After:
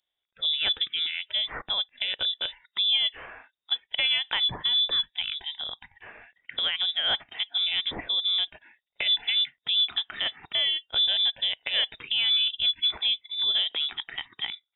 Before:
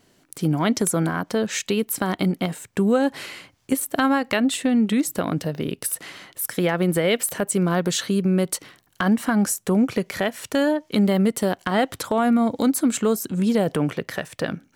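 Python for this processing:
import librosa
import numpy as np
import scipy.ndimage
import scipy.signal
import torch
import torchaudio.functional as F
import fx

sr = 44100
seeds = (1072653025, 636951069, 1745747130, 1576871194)

y = fx.freq_invert(x, sr, carrier_hz=3700)
y = fx.noise_reduce_blind(y, sr, reduce_db=20)
y = F.gain(torch.from_numpy(y), -5.5).numpy()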